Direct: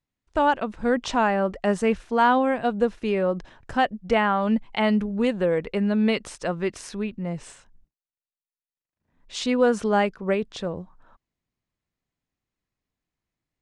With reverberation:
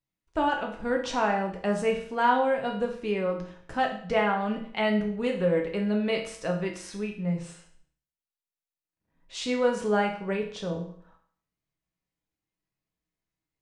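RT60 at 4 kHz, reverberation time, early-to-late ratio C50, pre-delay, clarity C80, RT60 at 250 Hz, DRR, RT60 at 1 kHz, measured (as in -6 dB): 0.55 s, 0.55 s, 7.5 dB, 6 ms, 11.5 dB, 0.55 s, 0.5 dB, 0.55 s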